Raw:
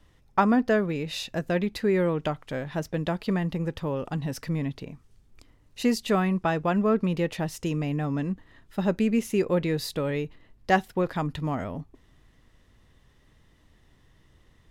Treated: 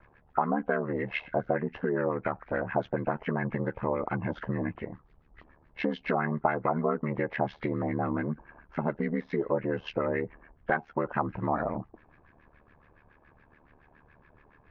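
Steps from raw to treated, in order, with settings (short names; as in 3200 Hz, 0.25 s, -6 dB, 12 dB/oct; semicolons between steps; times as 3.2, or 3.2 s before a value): nonlinear frequency compression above 1300 Hz 1.5:1; low shelf 180 Hz -9 dB; compressor 6:1, threshold -31 dBFS, peak gain reduction 14 dB; ring modulator 37 Hz; LFO low-pass sine 7.1 Hz 760–2000 Hz; gain +6.5 dB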